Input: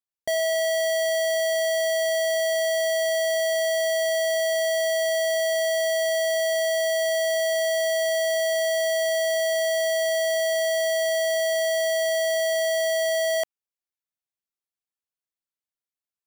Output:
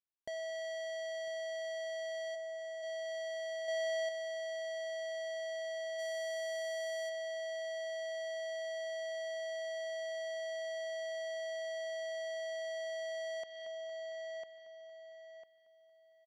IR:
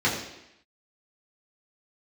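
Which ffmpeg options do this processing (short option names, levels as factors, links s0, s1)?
-filter_complex "[0:a]highshelf=f=3500:g=-7,asplit=2[s0][s1];[s1]adelay=1000,lowpass=f=4300:p=1,volume=0.237,asplit=2[s2][s3];[s3]adelay=1000,lowpass=f=4300:p=1,volume=0.3,asplit=2[s4][s5];[s5]adelay=1000,lowpass=f=4300:p=1,volume=0.3[s6];[s2][s4][s6]amix=inputs=3:normalize=0[s7];[s0][s7]amix=inputs=2:normalize=0,aresample=16000,aresample=44100,asplit=3[s8][s9][s10];[s8]afade=t=out:st=2.34:d=0.02[s11];[s9]highpass=f=370:w=0.5412,highpass=f=370:w=1.3066,afade=t=in:st=2.34:d=0.02,afade=t=out:st=2.82:d=0.02[s12];[s10]afade=t=in:st=2.82:d=0.02[s13];[s11][s12][s13]amix=inputs=3:normalize=0,asplit=2[s14][s15];[s15]aecho=0:1:229|458|687|916|1145|1374:0.158|0.0919|0.0533|0.0309|0.0179|0.0104[s16];[s14][s16]amix=inputs=2:normalize=0,acompressor=threshold=0.02:ratio=4,asplit=3[s17][s18][s19];[s17]afade=t=out:st=5.98:d=0.02[s20];[s18]equalizer=f=2400:w=0.31:g=8,afade=t=in:st=5.98:d=0.02,afade=t=out:st=7.08:d=0.02[s21];[s19]afade=t=in:st=7.08:d=0.02[s22];[s20][s21][s22]amix=inputs=3:normalize=0,asoftclip=type=tanh:threshold=0.0316,asettb=1/sr,asplit=3[s23][s24][s25];[s23]atrim=end=3.684[s26];[s24]atrim=start=3.68:end=4.09,asetpts=PTS-STARTPTS,afade=t=in:d=0.004:c=qsin,afade=t=out:st=0.406:d=0.004:c=qsin,acontrast=30[s27];[s25]atrim=start=4.086[s28];[s26][s27]acrossfade=d=0.004:c1=hsin:c2=qsin[s29];[s29][s28]acrossfade=d=0.004:c1=qsin:c2=hsin,volume=0.473"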